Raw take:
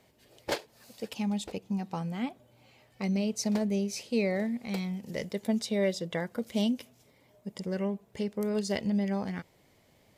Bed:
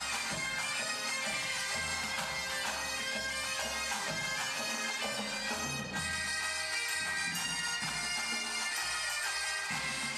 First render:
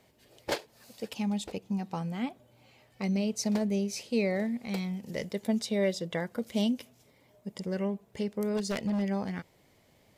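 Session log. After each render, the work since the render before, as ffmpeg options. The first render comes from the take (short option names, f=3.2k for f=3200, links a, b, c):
-filter_complex "[0:a]asettb=1/sr,asplit=3[a][b][c];[a]atrim=end=8.574[d];[b]atrim=start=8.57:end=9.02,asetpts=PTS-STARTPTS,afade=t=in:d=0.004:c=qsin,afade=t=out:st=0.446:d=0.004:c=qsin,aeval=exprs='0.0562*(abs(mod(val(0)/0.0562+3,4)-2)-1)':c=same[e];[c]atrim=start=9.016[f];[d][e]acrossfade=d=0.004:c1=hsin:c2=qsin[g];[g][f]acrossfade=d=0.004:c1=qsin:c2=hsin"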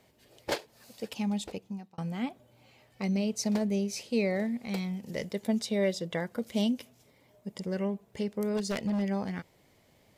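-filter_complex "[0:a]asplit=2[a][b];[a]atrim=end=1.98,asetpts=PTS-STARTPTS,afade=t=out:st=1.46:d=0.52[c];[b]atrim=start=1.98,asetpts=PTS-STARTPTS,afade=t=in:d=0.004:c=hsin[d];[c][d]concat=n=2:v=0:a=1"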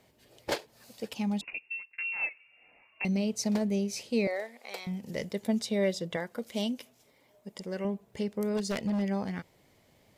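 -filter_complex "[0:a]asettb=1/sr,asplit=3[a][b][c];[a]atrim=end=1.414[d];[b]atrim=start=1.41:end=3.05,asetpts=PTS-STARTPTS,afade=t=in:d=0.004:c=qsin,afade=t=out:st=1.636:d=0.004:c=qsin,lowpass=f=2.5k:t=q:w=0.5098,lowpass=f=2.5k:t=q:w=0.6013,lowpass=f=2.5k:t=q:w=0.9,lowpass=f=2.5k:t=q:w=2.563,afreqshift=-2900[e];[c]atrim=start=3.046[f];[d][e]acrossfade=d=0.004:c1=hsin:c2=qsin[g];[g][f]acrossfade=d=0.004:c1=qsin:c2=hsin,asettb=1/sr,asplit=3[h][i][j];[h]atrim=end=4.274[k];[i]atrim=start=4.27:end=4.87,asetpts=PTS-STARTPTS,afade=t=in:d=0.004:c=qsin,afade=t=out:st=0.596:d=0.004:c=qsin,highpass=f=460:w=0.5412,highpass=f=460:w=1.3066[l];[j]atrim=start=4.866[m];[k][l]acrossfade=d=0.004:c1=hsin:c2=qsin[n];[n][m]acrossfade=d=0.004:c1=qsin:c2=hsin,asettb=1/sr,asplit=3[o][p][q];[o]atrim=end=6.164[r];[p]atrim=start=6.16:end=7.85,asetpts=PTS-STARTPTS,afade=t=in:d=0.004:c=qsin,afade=t=out:st=1.686:d=0.004:c=qsin,equalizer=f=92:w=0.5:g=-9.5[s];[q]atrim=start=7.846[t];[r][s]acrossfade=d=0.004:c1=hsin:c2=qsin[u];[u][t]acrossfade=d=0.004:c1=qsin:c2=hsin"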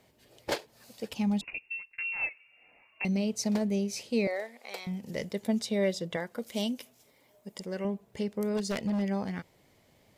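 -filter_complex "[0:a]asettb=1/sr,asplit=3[a][b][c];[a]atrim=end=1.104[d];[b]atrim=start=1.1:end=2.3,asetpts=PTS-STARTPTS,afade=t=in:d=0.004:c=qsin,afade=t=out:st=1.196:d=0.004:c=qsin,lowshelf=f=120:g=10[e];[c]atrim=start=2.296[f];[d][e]acrossfade=d=0.004:c1=hsin:c2=qsin[g];[g][f]acrossfade=d=0.004:c1=qsin:c2=hsin,asettb=1/sr,asplit=3[h][i][j];[h]atrim=end=6.404[k];[i]atrim=start=6.4:end=7.65,asetpts=PTS-STARTPTS,afade=t=in:d=0.004:c=qsin,afade=t=out:st=1.246:d=0.004:c=qsin,highshelf=f=7.3k:g=5.5[l];[j]atrim=start=7.646[m];[k][l]acrossfade=d=0.004:c1=hsin:c2=qsin[n];[n][m]acrossfade=d=0.004:c1=qsin:c2=hsin"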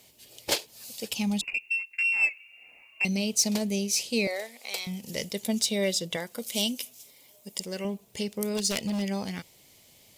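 -af "aexciter=amount=1.6:drive=9.9:freq=2.4k"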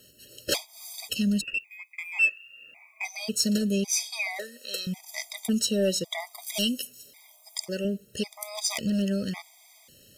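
-filter_complex "[0:a]asplit=2[a][b];[b]asoftclip=type=tanh:threshold=-25.5dB,volume=-3.5dB[c];[a][c]amix=inputs=2:normalize=0,afftfilt=real='re*gt(sin(2*PI*0.91*pts/sr)*(1-2*mod(floor(b*sr/1024/640),2)),0)':imag='im*gt(sin(2*PI*0.91*pts/sr)*(1-2*mod(floor(b*sr/1024/640),2)),0)':win_size=1024:overlap=0.75"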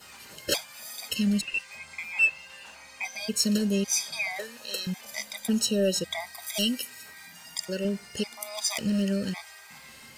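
-filter_complex "[1:a]volume=-13.5dB[a];[0:a][a]amix=inputs=2:normalize=0"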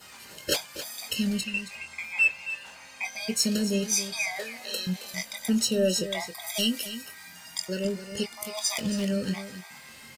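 -filter_complex "[0:a]asplit=2[a][b];[b]adelay=22,volume=-8.5dB[c];[a][c]amix=inputs=2:normalize=0,aecho=1:1:271:0.251"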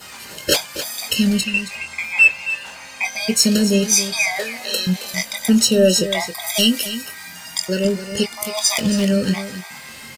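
-af "volume=10.5dB,alimiter=limit=-3dB:level=0:latency=1"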